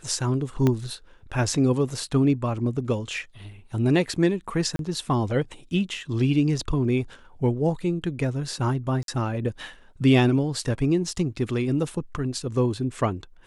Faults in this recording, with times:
0:00.67: click −10 dBFS
0:04.76–0:04.79: drop-out 32 ms
0:09.03–0:09.08: drop-out 52 ms

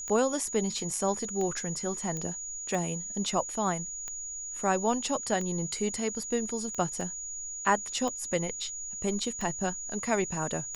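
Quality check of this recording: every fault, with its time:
scratch tick 45 rpm −23 dBFS
whistle 6,800 Hz −36 dBFS
0:02.17: click −22 dBFS
0:07.01: drop-out 2.3 ms

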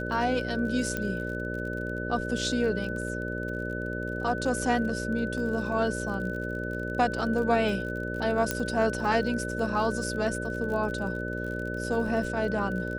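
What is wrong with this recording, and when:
mains buzz 60 Hz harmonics 10 −34 dBFS
surface crackle 39 per second −36 dBFS
whistle 1,500 Hz −35 dBFS
0:00.97: click −16 dBFS
0:08.51: click −10 dBFS

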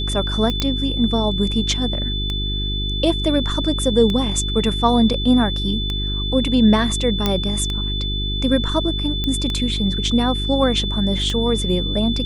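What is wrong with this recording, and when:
mains hum 50 Hz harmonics 8 −24 dBFS
scratch tick 33 1/3 rpm −11 dBFS
whistle 3,500 Hz −25 dBFS
0:00.60: click −6 dBFS
0:07.26: click −4 dBFS
0:09.24: click −10 dBFS

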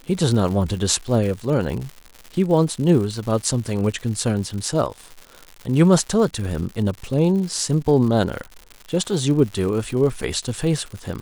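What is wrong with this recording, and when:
surface crackle 170 per second −29 dBFS

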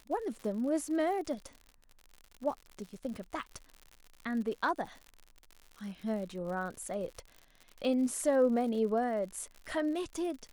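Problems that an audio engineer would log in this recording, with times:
surface crackle 86 per second −41 dBFS

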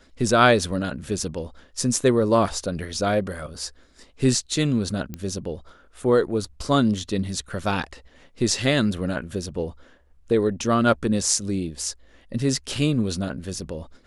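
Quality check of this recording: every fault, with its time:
0:05.14: click −18 dBFS

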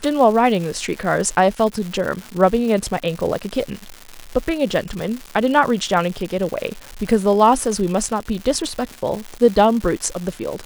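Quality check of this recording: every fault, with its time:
surface crackle 290 per second −25 dBFS

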